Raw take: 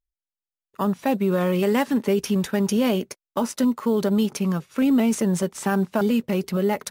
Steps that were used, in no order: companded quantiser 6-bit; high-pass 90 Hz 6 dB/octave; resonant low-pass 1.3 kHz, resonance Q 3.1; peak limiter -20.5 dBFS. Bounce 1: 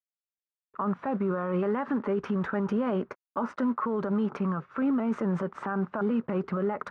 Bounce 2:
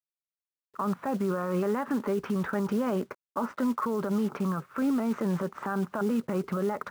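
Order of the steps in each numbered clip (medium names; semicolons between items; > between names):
high-pass > companded quantiser > resonant low-pass > peak limiter; resonant low-pass > companded quantiser > high-pass > peak limiter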